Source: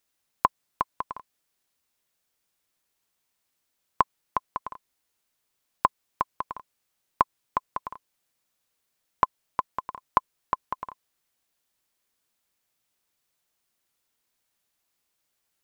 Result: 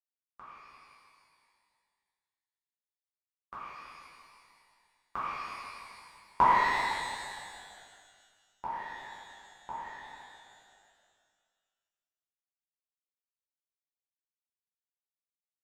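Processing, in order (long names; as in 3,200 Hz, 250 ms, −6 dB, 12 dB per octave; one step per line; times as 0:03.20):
spectral dynamics exaggerated over time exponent 3
source passing by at 0:06.29, 41 m/s, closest 14 metres
echo with shifted repeats 163 ms, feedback 64%, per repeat −34 Hz, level −11.5 dB
reverb with rising layers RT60 1.7 s, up +12 semitones, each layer −8 dB, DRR −11.5 dB
level −5.5 dB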